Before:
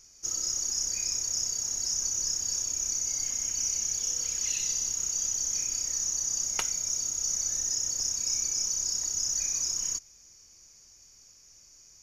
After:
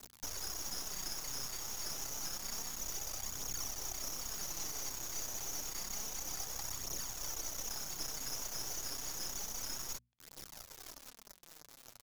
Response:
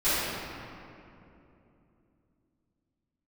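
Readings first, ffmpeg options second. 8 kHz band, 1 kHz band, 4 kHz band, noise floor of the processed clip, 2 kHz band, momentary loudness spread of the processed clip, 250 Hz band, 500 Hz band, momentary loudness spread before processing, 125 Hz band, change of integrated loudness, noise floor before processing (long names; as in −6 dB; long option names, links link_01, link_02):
−14.0 dB, +2.5 dB, −9.5 dB, −60 dBFS, −3.0 dB, 11 LU, can't be measured, +2.0 dB, 1 LU, −2.0 dB, −12.5 dB, −56 dBFS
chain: -filter_complex "[0:a]firequalizer=gain_entry='entry(130,0);entry(460,-16);entry(820,11);entry(1600,-19);entry(3200,-14);entry(4800,10);entry(13000,-7)':delay=0.05:min_phase=1,asplit=2[link_01][link_02];[link_02]adelay=1166,volume=-9dB,highshelf=frequency=4000:gain=-26.2[link_03];[link_01][link_03]amix=inputs=2:normalize=0,acrossover=split=920|5400[link_04][link_05][link_06];[link_04]acompressor=threshold=-49dB:ratio=4[link_07];[link_05]acompressor=threshold=-43dB:ratio=4[link_08];[link_06]acompressor=threshold=-52dB:ratio=4[link_09];[link_07][link_08][link_09]amix=inputs=3:normalize=0,acrusher=bits=6:mix=0:aa=0.000001,equalizer=frequency=3400:width_type=o:width=0.64:gain=3.5,flanger=delay=0.1:depth=8.9:regen=14:speed=0.29:shape=triangular,aeval=exprs='max(val(0),0)':channel_layout=same,bandreject=frequency=60:width_type=h:width=6,bandreject=frequency=120:width_type=h:width=6,bandreject=frequency=180:width_type=h:width=6,bandreject=frequency=240:width_type=h:width=6,volume=4.5dB"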